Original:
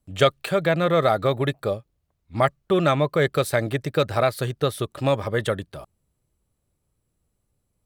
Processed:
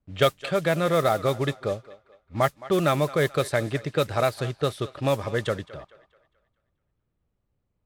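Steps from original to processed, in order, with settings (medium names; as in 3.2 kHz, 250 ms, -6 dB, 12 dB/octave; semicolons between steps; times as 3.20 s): modulation noise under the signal 20 dB; thinning echo 216 ms, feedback 44%, high-pass 420 Hz, level -17 dB; level-controlled noise filter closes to 2.7 kHz, open at -15 dBFS; trim -2.5 dB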